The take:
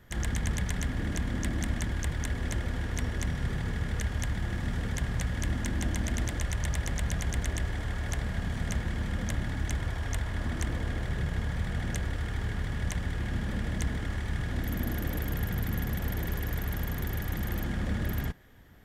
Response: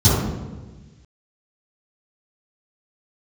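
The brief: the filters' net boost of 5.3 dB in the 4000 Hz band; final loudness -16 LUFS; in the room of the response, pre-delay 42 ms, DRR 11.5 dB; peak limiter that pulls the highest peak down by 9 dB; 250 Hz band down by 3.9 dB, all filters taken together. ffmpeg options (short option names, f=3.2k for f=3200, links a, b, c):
-filter_complex "[0:a]equalizer=f=250:t=o:g=-5.5,equalizer=f=4k:t=o:g=7,alimiter=limit=-24dB:level=0:latency=1,asplit=2[a][b];[1:a]atrim=start_sample=2205,adelay=42[c];[b][c]afir=irnorm=-1:irlink=0,volume=-32.5dB[d];[a][d]amix=inputs=2:normalize=0,volume=11.5dB"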